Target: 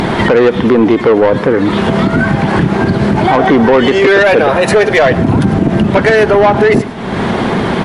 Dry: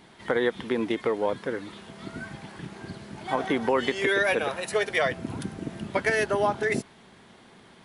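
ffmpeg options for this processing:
-filter_complex "[0:a]lowpass=f=1.1k:p=1,acompressor=mode=upward:threshold=-29dB:ratio=2.5,asoftclip=type=tanh:threshold=-24.5dB,asplit=2[a][b];[b]aecho=0:1:107:0.0891[c];[a][c]amix=inputs=2:normalize=0,alimiter=level_in=30.5dB:limit=-1dB:release=50:level=0:latency=1,volume=-1.5dB" -ar 48000 -c:a libmp3lame -b:a 56k

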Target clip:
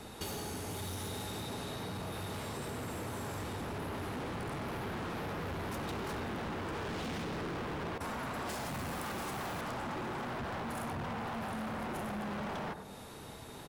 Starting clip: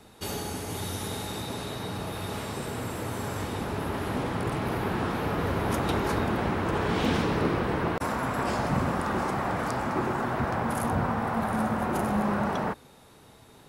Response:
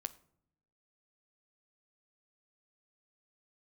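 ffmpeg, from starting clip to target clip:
-filter_complex "[0:a]aecho=1:1:97:0.133,asplit=2[a][b];[1:a]atrim=start_sample=2205,asetrate=29547,aresample=44100[c];[b][c]afir=irnorm=-1:irlink=0,volume=-1.5dB[d];[a][d]amix=inputs=2:normalize=0,asoftclip=type=hard:threshold=-26dB,asettb=1/sr,asplit=3[e][f][g];[e]atrim=end=8.494[h];[f]atrim=start=8.49:end=9.61,asetpts=PTS-STARTPTS,afade=t=in:d=0.004:c=qsin,afade=t=out:st=1.116:d=0.004:c=qsin,aemphasis=mode=production:type=50kf[i];[g]atrim=start=9.606[j];[h][i]acrossfade=d=0.004:c1=hsin:c2=qsin[k];[k][j]acrossfade=d=0.004:c1=qsin:c2=hsin,acompressor=threshold=-39dB:ratio=6"

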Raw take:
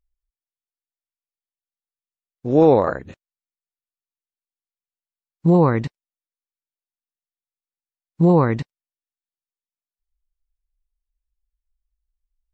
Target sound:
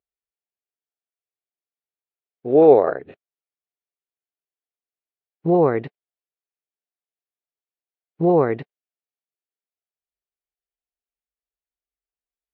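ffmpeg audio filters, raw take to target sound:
-af "highpass=170,equalizer=f=200:t=q:w=4:g=-8,equalizer=f=420:t=q:w=4:g=9,equalizer=f=700:t=q:w=4:g=7,equalizer=f=1k:t=q:w=4:g=-5,lowpass=f=3.2k:w=0.5412,lowpass=f=3.2k:w=1.3066,volume=-2.5dB"

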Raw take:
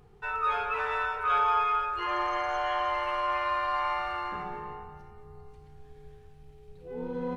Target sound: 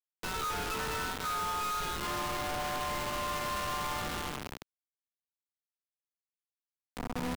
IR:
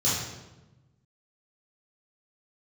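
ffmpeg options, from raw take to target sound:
-filter_complex "[0:a]acrusher=bits=4:mix=0:aa=0.000001,acrossover=split=290[a][b];[b]acompressor=threshold=-43dB:ratio=2[c];[a][c]amix=inputs=2:normalize=0,asoftclip=type=tanh:threshold=-37.5dB,volume=7dB"

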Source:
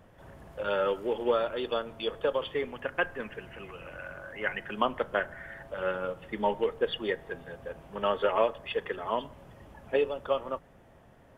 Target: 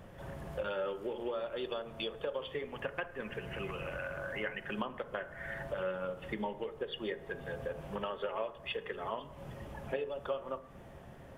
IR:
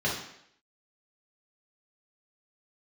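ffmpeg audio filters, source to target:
-filter_complex "[0:a]acompressor=threshold=-40dB:ratio=6,asplit=2[a][b];[1:a]atrim=start_sample=2205,lowpass=2.2k[c];[b][c]afir=irnorm=-1:irlink=0,volume=-20dB[d];[a][d]amix=inputs=2:normalize=0,volume=4.5dB"

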